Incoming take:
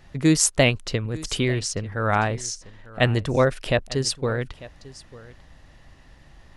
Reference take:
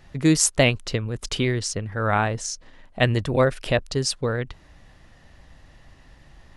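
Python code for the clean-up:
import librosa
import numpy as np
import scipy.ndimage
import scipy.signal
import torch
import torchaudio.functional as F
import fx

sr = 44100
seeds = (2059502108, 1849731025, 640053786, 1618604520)

y = fx.fix_echo_inverse(x, sr, delay_ms=896, level_db=-19.5)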